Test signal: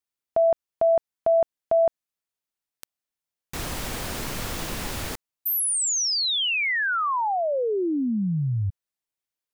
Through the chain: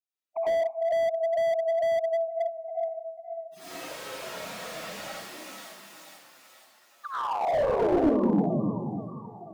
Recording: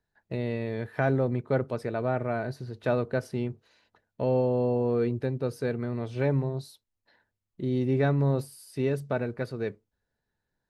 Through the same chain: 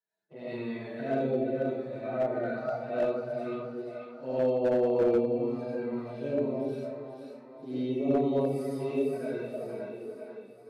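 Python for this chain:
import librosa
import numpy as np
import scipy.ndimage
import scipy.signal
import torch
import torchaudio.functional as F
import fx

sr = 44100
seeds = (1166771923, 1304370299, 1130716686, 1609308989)

p1 = fx.hpss_only(x, sr, part='harmonic')
p2 = p1 + fx.echo_split(p1, sr, split_hz=640.0, low_ms=294, high_ms=484, feedback_pct=52, wet_db=-5, dry=0)
p3 = fx.env_flanger(p2, sr, rest_ms=9.3, full_db=-22.5)
p4 = scipy.signal.sosfilt(scipy.signal.butter(4, 180.0, 'highpass', fs=sr, output='sos'), p3)
p5 = fx.rev_freeverb(p4, sr, rt60_s=0.68, hf_ratio=0.8, predelay_ms=50, drr_db=-10.0)
p6 = fx.slew_limit(p5, sr, full_power_hz=110.0)
y = p6 * librosa.db_to_amplitude(-7.5)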